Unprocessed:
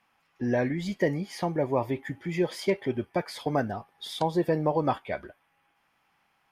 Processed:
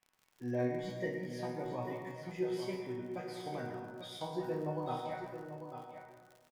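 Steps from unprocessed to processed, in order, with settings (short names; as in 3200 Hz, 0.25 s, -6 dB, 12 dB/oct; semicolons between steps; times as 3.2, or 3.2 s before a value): resonator bank B2 major, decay 0.46 s; de-hum 78.62 Hz, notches 38; crackle 54/s -53 dBFS; echo 0.844 s -9 dB; plate-style reverb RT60 1.4 s, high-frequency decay 0.35×, pre-delay 0.1 s, DRR 5 dB; gain +4 dB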